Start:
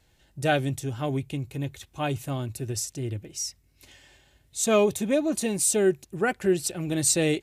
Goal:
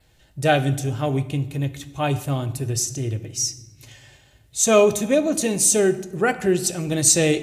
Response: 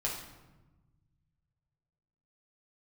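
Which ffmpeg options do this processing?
-filter_complex "[0:a]adynamicequalizer=threshold=0.00447:dfrequency=6300:dqfactor=4.9:tfrequency=6300:tqfactor=4.9:attack=5:release=100:ratio=0.375:range=4:mode=boostabove:tftype=bell,asplit=2[s0][s1];[1:a]atrim=start_sample=2205[s2];[s1][s2]afir=irnorm=-1:irlink=0,volume=0.282[s3];[s0][s3]amix=inputs=2:normalize=0,volume=1.41"

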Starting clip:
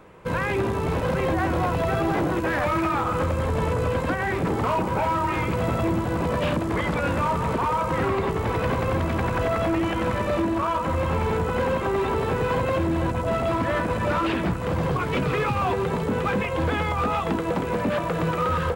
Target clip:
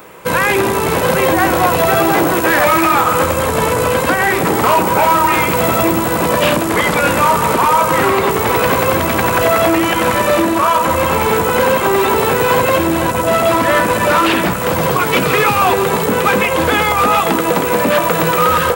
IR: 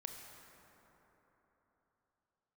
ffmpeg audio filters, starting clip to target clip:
-filter_complex "[0:a]aemphasis=mode=production:type=bsi,acontrast=39,asplit=2[s0][s1];[1:a]atrim=start_sample=2205[s2];[s1][s2]afir=irnorm=-1:irlink=0,volume=0.708[s3];[s0][s3]amix=inputs=2:normalize=0,volume=1.58"

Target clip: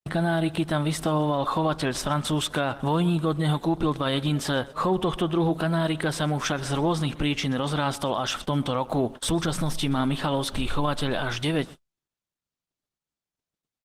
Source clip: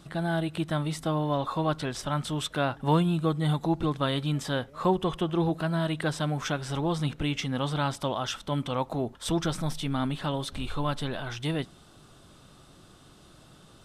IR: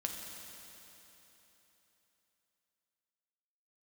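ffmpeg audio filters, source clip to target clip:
-af "acontrast=60,asetnsamples=n=441:p=0,asendcmd='2.01 equalizer g -14',equalizer=f=62:w=5.5:g=-6.5,acompressor=threshold=0.0178:ratio=1.5,aecho=1:1:127|254|381:0.075|0.0382|0.0195,agate=range=0.00126:threshold=0.01:ratio=16:detection=peak,adynamicequalizer=threshold=0.00708:dfrequency=120:dqfactor=0.89:tfrequency=120:tqfactor=0.89:attack=5:release=100:ratio=0.375:range=2:mode=cutabove:tftype=bell,alimiter=limit=0.0841:level=0:latency=1:release=36,volume=2.11" -ar 48000 -c:a libopus -b:a 20k

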